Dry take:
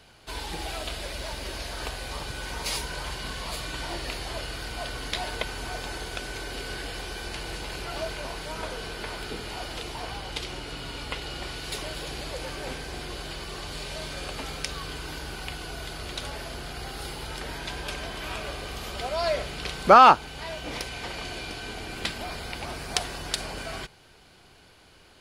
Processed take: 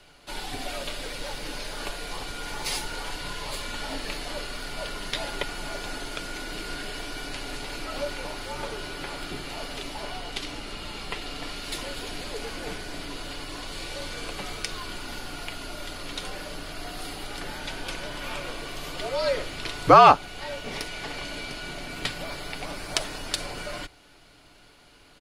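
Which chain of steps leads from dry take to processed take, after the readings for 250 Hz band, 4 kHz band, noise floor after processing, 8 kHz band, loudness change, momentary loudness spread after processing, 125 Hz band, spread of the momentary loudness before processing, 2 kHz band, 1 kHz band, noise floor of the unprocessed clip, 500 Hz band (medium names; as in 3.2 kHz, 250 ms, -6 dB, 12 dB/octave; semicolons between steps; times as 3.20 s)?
+1.5 dB, 0.0 dB, -54 dBFS, +0.5 dB, 0.0 dB, 7 LU, -1.5 dB, 6 LU, 0.0 dB, 0.0 dB, -55 dBFS, +1.0 dB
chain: frequency shift -70 Hz; comb 6.9 ms, depth 31%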